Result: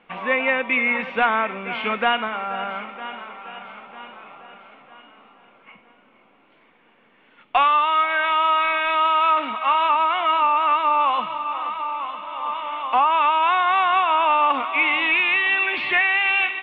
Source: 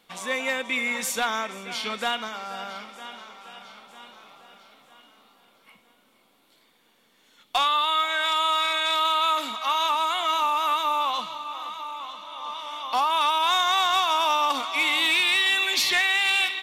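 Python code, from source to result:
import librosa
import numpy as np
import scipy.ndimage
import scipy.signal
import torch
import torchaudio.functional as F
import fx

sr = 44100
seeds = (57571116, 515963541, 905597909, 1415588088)

p1 = scipy.signal.sosfilt(scipy.signal.ellip(4, 1.0, 70, 2700.0, 'lowpass', fs=sr, output='sos'), x)
p2 = fx.peak_eq(p1, sr, hz=66.0, db=-5.5, octaves=0.77)
p3 = fx.rider(p2, sr, range_db=4, speed_s=0.5)
y = p2 + F.gain(torch.from_numpy(p3), 0.0).numpy()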